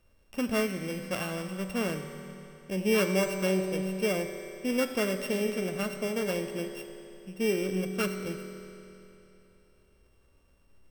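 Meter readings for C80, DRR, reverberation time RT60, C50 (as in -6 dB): 7.0 dB, 5.0 dB, 3.0 s, 6.5 dB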